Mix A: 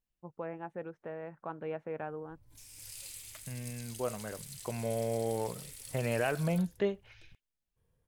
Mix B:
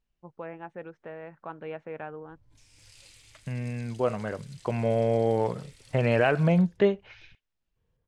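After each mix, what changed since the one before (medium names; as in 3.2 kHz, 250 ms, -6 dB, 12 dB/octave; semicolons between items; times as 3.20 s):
first voice: add treble shelf 2.1 kHz +11 dB; second voice +9.0 dB; master: add distance through air 100 m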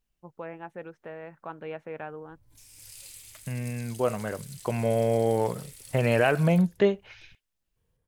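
master: remove distance through air 100 m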